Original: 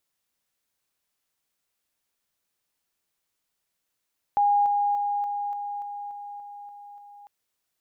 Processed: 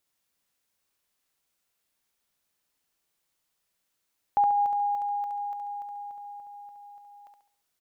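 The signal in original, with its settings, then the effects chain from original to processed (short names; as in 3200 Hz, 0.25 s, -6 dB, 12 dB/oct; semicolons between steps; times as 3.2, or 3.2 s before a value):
level ladder 817 Hz -17.5 dBFS, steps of -3 dB, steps 10, 0.29 s 0.00 s
feedback echo 69 ms, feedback 39%, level -4.5 dB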